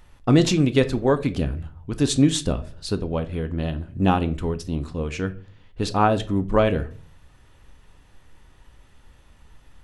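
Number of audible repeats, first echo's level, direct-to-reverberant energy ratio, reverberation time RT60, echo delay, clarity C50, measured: no echo, no echo, 9.5 dB, 0.45 s, no echo, 16.5 dB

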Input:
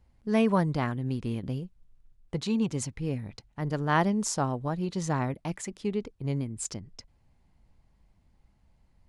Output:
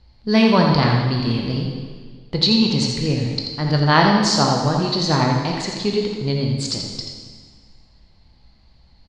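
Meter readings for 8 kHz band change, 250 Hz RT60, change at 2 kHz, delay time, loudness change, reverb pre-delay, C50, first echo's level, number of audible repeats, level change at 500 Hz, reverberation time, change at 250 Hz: +7.0 dB, 1.7 s, +12.5 dB, 84 ms, +11.5 dB, 6 ms, 1.5 dB, -7.0 dB, 1, +10.5 dB, 1.7 s, +10.5 dB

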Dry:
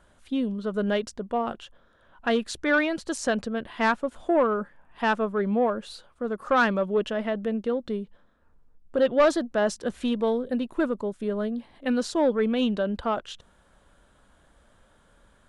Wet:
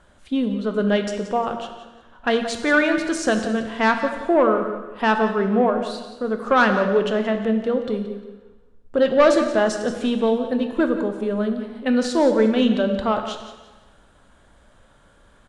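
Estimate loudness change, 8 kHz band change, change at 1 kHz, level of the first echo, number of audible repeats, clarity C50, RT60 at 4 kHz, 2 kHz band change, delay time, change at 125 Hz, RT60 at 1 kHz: +5.5 dB, +4.5 dB, +5.5 dB, -13.0 dB, 2, 7.0 dB, 1.2 s, +5.5 dB, 176 ms, no reading, 1.3 s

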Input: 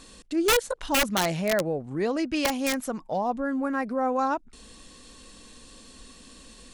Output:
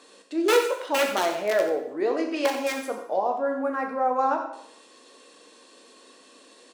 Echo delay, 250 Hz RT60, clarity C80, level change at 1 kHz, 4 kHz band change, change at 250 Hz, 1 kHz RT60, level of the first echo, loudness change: 90 ms, 0.70 s, 8.0 dB, +2.5 dB, -2.5 dB, -3.0 dB, 0.70 s, -11.5 dB, +1.0 dB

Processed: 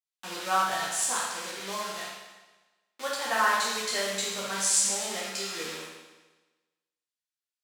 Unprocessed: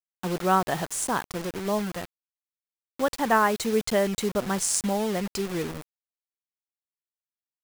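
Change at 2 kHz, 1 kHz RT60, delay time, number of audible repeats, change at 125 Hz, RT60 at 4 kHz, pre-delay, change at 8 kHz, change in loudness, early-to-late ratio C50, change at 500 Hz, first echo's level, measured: +1.0 dB, 1.2 s, no echo, no echo, under -15 dB, 1.2 s, 9 ms, +3.5 dB, -1.5 dB, -0.5 dB, -9.0 dB, no echo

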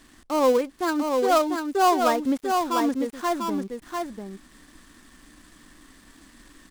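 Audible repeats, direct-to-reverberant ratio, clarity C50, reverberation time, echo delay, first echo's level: 1, no reverb, no reverb, no reverb, 695 ms, -4.5 dB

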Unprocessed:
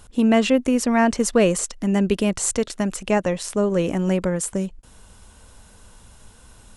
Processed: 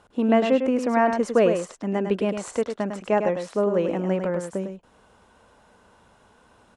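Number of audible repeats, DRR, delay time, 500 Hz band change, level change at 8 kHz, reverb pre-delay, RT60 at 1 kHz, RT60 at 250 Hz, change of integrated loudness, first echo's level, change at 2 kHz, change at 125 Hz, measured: 1, no reverb, 103 ms, 0.0 dB, -16.0 dB, no reverb, no reverb, no reverb, -2.5 dB, -7.0 dB, -4.0 dB, -6.0 dB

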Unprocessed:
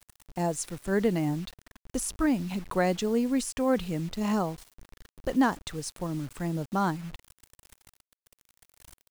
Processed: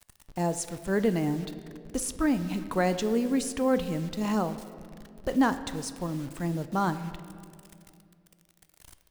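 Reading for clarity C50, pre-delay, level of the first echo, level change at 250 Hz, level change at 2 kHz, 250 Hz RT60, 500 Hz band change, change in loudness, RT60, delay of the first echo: 12.5 dB, 10 ms, no echo, +0.5 dB, +0.5 dB, 2.9 s, +0.5 dB, 0.0 dB, 2.5 s, no echo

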